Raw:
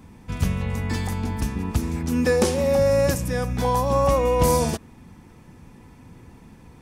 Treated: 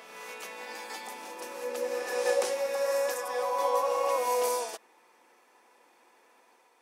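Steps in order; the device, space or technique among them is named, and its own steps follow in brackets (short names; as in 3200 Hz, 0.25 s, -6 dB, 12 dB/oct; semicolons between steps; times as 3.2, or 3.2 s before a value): ghost voice (reverse; reverb RT60 2.7 s, pre-delay 0.116 s, DRR -0.5 dB; reverse; HPF 490 Hz 24 dB/oct); gain -8 dB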